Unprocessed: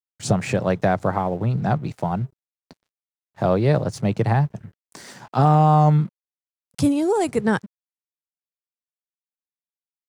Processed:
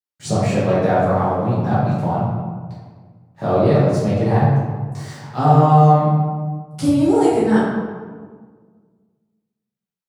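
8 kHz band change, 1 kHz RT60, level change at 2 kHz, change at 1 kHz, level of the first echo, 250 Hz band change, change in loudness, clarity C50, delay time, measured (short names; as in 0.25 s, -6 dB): n/a, 1.5 s, +1.5 dB, +4.5 dB, none, +5.0 dB, +4.0 dB, -2.0 dB, none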